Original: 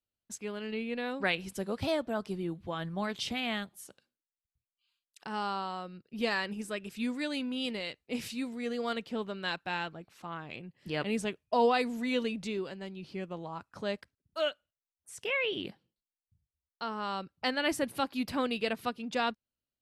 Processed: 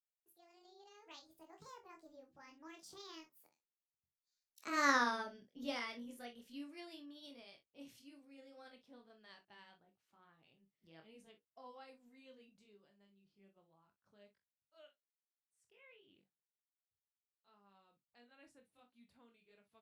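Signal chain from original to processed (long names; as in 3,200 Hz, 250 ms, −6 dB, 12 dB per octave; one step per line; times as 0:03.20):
pitch glide at a constant tempo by +7 semitones ending unshifted
source passing by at 0:04.94, 39 m/s, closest 5 metres
ambience of single reflections 25 ms −7 dB, 46 ms −12 dB, 61 ms −16 dB
level +4.5 dB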